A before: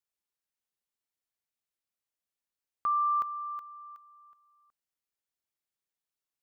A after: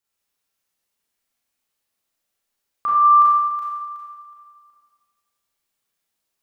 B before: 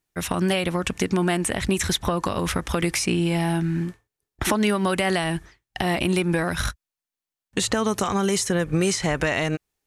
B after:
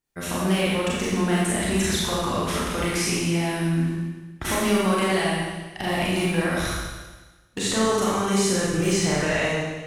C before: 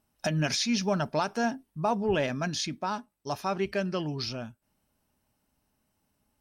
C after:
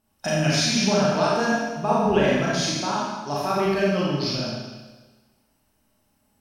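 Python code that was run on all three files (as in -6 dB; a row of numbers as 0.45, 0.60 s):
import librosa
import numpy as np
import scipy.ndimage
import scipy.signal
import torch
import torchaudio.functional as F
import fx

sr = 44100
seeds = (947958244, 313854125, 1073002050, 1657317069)

y = 10.0 ** (-13.0 / 20.0) * (np.abs((x / 10.0 ** (-13.0 / 20.0) + 3.0) % 4.0 - 2.0) - 1.0)
y = fx.rev_schroeder(y, sr, rt60_s=1.3, comb_ms=28, drr_db=-6.5)
y = y * 10.0 ** (-24 / 20.0) / np.sqrt(np.mean(np.square(y)))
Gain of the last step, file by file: +6.0, -6.5, +0.5 dB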